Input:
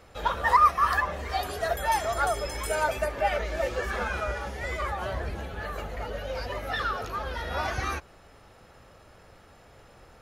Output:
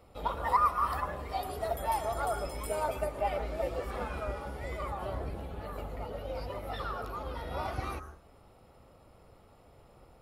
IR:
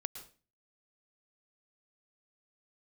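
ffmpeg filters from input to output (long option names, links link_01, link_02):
-filter_complex "[0:a]tremolo=f=210:d=0.462,asplit=2[link_01][link_02];[link_02]asuperstop=centerf=3300:order=8:qfactor=0.72[link_03];[1:a]atrim=start_sample=2205[link_04];[link_03][link_04]afir=irnorm=-1:irlink=0,volume=2.5dB[link_05];[link_01][link_05]amix=inputs=2:normalize=0,volume=-8dB"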